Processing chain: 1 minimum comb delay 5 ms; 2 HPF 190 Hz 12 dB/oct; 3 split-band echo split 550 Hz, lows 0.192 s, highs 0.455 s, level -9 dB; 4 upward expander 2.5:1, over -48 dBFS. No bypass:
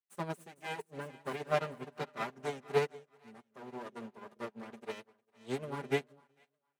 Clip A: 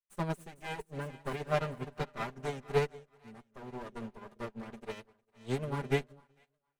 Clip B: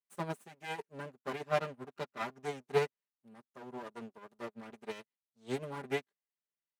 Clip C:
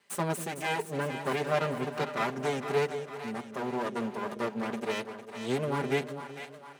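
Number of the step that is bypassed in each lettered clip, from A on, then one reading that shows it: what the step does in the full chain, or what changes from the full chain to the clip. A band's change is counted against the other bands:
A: 2, 125 Hz band +6.5 dB; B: 3, momentary loudness spread change -2 LU; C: 4, 8 kHz band +4.5 dB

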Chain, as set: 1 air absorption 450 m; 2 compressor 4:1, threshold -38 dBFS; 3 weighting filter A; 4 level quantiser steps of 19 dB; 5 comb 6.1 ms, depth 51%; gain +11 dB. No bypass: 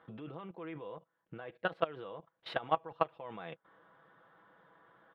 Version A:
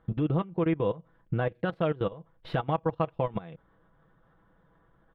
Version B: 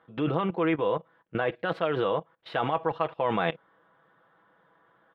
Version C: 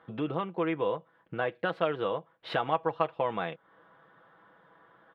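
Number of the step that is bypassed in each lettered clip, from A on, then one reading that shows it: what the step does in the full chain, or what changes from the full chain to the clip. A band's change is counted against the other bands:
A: 3, 125 Hz band +17.0 dB; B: 2, mean gain reduction 14.5 dB; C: 4, crest factor change -6.0 dB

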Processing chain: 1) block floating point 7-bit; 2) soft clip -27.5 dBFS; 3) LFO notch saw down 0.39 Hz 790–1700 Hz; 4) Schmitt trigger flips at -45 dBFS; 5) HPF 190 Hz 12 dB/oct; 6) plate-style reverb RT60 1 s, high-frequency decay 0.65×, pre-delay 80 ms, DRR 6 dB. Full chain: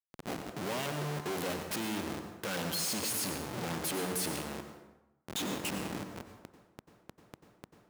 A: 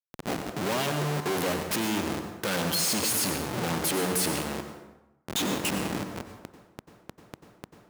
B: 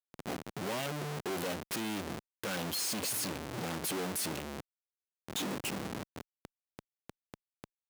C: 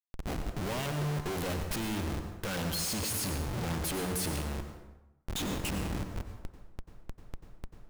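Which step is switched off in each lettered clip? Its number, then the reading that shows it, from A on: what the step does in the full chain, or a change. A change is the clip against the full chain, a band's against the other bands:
2, distortion -6 dB; 6, momentary loudness spread change -2 LU; 5, 125 Hz band +7.5 dB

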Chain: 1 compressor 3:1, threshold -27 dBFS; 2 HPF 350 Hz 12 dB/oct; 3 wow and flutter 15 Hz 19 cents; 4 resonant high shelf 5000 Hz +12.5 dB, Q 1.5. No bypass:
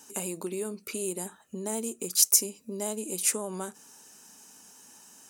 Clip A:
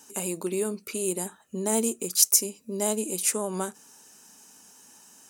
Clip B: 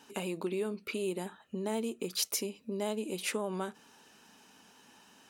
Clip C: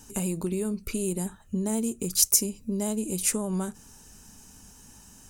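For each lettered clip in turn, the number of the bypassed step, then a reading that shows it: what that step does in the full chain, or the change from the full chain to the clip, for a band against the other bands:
1, loudness change +2.0 LU; 4, 8 kHz band -14.0 dB; 2, 250 Hz band +9.0 dB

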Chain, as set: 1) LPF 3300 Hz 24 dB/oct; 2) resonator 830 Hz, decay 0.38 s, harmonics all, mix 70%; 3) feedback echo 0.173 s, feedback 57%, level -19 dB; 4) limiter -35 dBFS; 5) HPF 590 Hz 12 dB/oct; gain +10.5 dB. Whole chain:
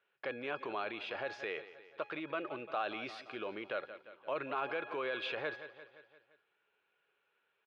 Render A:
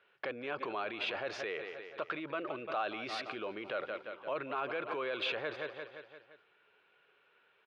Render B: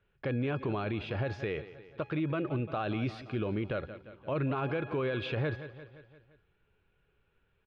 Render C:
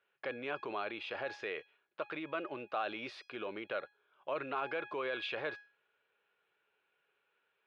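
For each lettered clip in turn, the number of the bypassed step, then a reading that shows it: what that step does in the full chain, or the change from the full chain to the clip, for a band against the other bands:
2, 4 kHz band +3.0 dB; 5, 125 Hz band +25.5 dB; 3, momentary loudness spread change -3 LU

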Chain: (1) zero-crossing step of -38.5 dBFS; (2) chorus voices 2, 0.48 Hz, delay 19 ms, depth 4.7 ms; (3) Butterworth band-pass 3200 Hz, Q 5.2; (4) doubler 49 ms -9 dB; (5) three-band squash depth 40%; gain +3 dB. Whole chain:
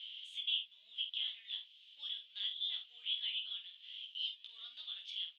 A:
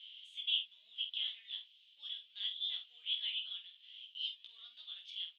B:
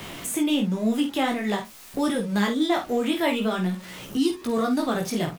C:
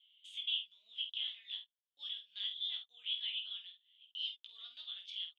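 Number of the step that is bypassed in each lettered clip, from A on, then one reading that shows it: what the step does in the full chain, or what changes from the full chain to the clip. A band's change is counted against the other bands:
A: 5, crest factor change +2.5 dB; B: 3, loudness change +15.0 LU; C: 1, distortion -22 dB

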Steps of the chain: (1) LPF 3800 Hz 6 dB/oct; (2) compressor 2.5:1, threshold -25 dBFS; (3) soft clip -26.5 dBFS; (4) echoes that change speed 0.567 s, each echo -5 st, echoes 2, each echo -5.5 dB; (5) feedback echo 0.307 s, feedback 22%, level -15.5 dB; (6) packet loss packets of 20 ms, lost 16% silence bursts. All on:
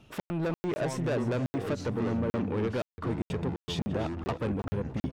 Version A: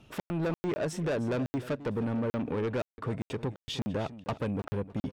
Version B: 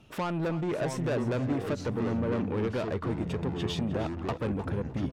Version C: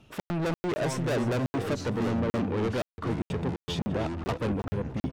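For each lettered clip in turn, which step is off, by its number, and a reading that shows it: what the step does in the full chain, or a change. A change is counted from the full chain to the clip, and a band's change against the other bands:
4, crest factor change -3.0 dB; 6, momentary loudness spread change -1 LU; 2, mean gain reduction 5.0 dB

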